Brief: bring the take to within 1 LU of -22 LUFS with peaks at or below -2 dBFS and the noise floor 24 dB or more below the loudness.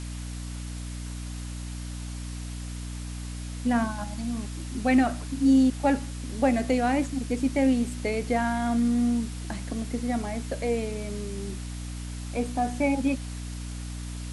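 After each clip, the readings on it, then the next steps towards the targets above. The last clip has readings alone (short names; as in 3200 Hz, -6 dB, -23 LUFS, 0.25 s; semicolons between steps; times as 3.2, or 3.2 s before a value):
hum 60 Hz; harmonics up to 300 Hz; hum level -33 dBFS; noise floor -36 dBFS; noise floor target -53 dBFS; loudness -28.5 LUFS; peak -10.0 dBFS; loudness target -22.0 LUFS
-> de-hum 60 Hz, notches 5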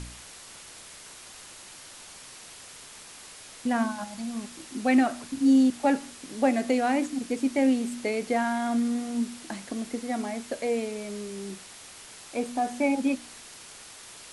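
hum none; noise floor -47 dBFS; noise floor target -52 dBFS
-> denoiser 6 dB, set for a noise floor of -47 dBFS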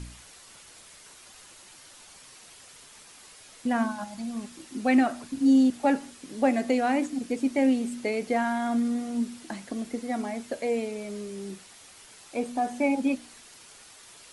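noise floor -51 dBFS; noise floor target -52 dBFS
-> denoiser 6 dB, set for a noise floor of -51 dBFS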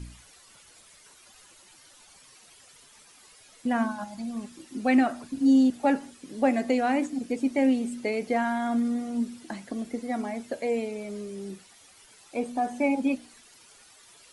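noise floor -55 dBFS; loudness -27.5 LUFS; peak -10.5 dBFS; loudness target -22.0 LUFS
-> gain +5.5 dB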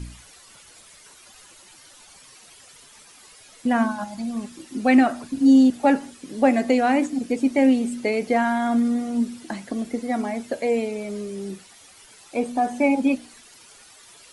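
loudness -22.0 LUFS; peak -5.0 dBFS; noise floor -50 dBFS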